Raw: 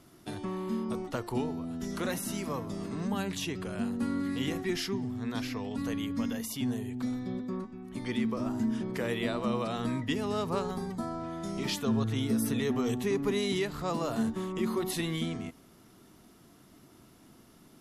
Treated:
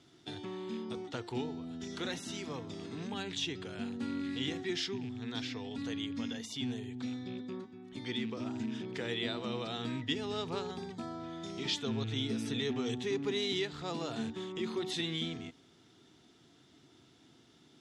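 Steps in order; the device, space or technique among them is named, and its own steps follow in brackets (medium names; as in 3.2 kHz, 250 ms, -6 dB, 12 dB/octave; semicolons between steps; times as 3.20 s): car door speaker with a rattle (rattle on loud lows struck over -33 dBFS, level -41 dBFS; cabinet simulation 100–7400 Hz, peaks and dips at 200 Hz -9 dB, 590 Hz -7 dB, 1.1 kHz -8 dB, 3.5 kHz +9 dB); trim -3 dB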